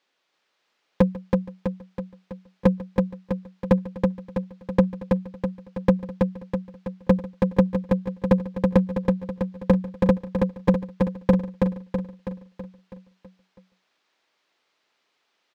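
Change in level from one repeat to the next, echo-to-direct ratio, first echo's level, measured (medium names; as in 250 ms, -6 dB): no regular repeats, -2.0 dB, -19.5 dB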